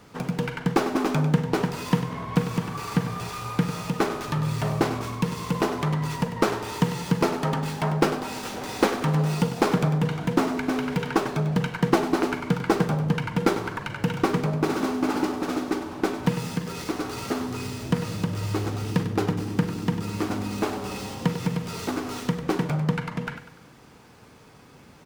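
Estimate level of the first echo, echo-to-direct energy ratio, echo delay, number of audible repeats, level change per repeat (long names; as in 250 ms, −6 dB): −11.0 dB, −10.0 dB, 98 ms, 3, −7.5 dB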